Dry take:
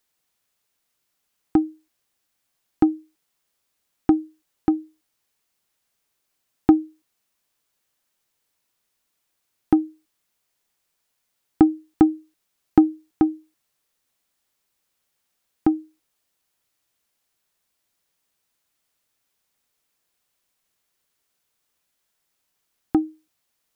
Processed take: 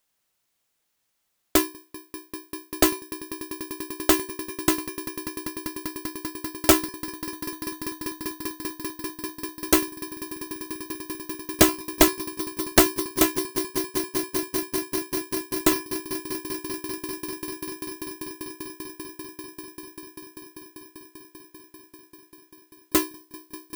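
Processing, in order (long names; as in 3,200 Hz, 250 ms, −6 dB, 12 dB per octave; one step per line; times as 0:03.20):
samples in bit-reversed order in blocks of 64 samples
echo that builds up and dies away 196 ms, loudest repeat 8, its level −16 dB
highs frequency-modulated by the lows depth 0.92 ms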